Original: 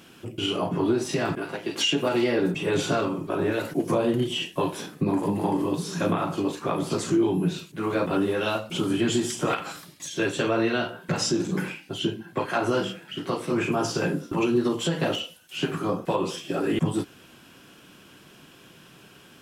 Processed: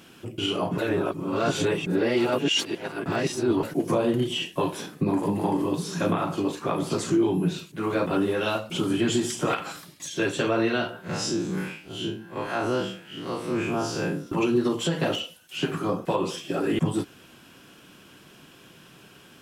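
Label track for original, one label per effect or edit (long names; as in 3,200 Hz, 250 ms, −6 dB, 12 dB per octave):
0.780000	3.630000	reverse
11.010000	14.270000	spectrum smeared in time width 84 ms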